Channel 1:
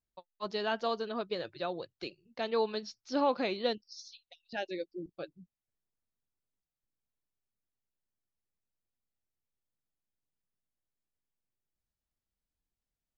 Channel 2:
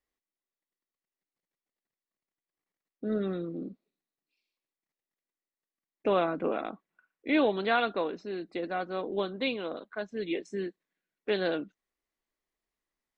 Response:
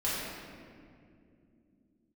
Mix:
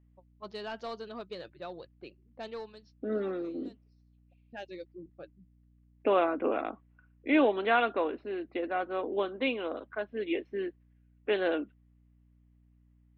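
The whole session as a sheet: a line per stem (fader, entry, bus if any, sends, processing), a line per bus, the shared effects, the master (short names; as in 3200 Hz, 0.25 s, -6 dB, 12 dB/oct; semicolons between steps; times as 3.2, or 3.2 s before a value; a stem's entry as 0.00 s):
-5.0 dB, 0.00 s, no send, low-pass opened by the level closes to 360 Hz, open at -31 dBFS; soft clip -24.5 dBFS, distortion -15 dB; auto duck -19 dB, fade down 0.55 s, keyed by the second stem
+1.5 dB, 0.00 s, no send, elliptic band-pass 250–3000 Hz; hum 60 Hz, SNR 29 dB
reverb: off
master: dry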